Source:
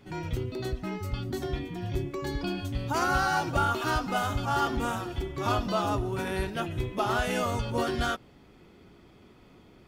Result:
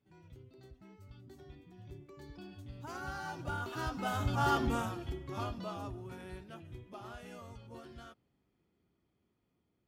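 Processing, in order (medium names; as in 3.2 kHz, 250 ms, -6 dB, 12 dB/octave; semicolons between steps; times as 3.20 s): Doppler pass-by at 4.52 s, 8 m/s, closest 2.6 m; high-pass 57 Hz; bass shelf 240 Hz +5.5 dB; trim -3.5 dB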